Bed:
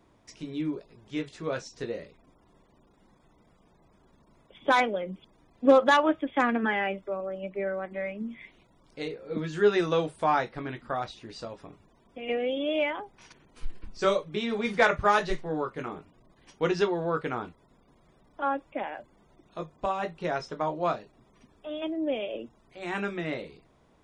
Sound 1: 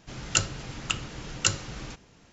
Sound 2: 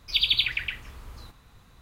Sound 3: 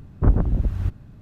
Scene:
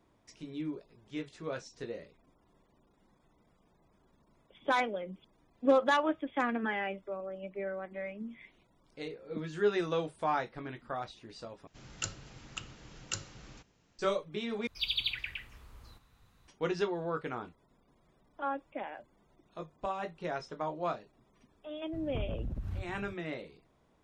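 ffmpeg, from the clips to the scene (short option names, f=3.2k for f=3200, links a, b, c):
-filter_complex "[0:a]volume=-6.5dB[a];[3:a]acompressor=threshold=-30dB:ratio=6:attack=3.2:release=140:knee=1:detection=peak[b];[a]asplit=3[c][d][e];[c]atrim=end=11.674[f];[1:a]atrim=end=2.32,asetpts=PTS-STARTPTS,volume=-13dB[g];[d]atrim=start=13.986:end=14.674[h];[2:a]atrim=end=1.81,asetpts=PTS-STARTPTS,volume=-10dB[i];[e]atrim=start=16.476[j];[b]atrim=end=1.21,asetpts=PTS-STARTPTS,volume=-3.5dB,afade=t=in:d=0.004:c=hsin,afade=t=out:st=1.206:d=0.004:c=hsin,adelay=21930[k];[f][g]acrossfade=d=0.004:c1=hsin:c2=hsin[l];[l][h]acrossfade=d=0.004:c1=hsin:c2=hsin[m];[m][i]acrossfade=d=0.004:c1=hsin:c2=hsin[n];[n][j]acrossfade=d=0.004:c1=hsin:c2=hsin[o];[o][k]amix=inputs=2:normalize=0"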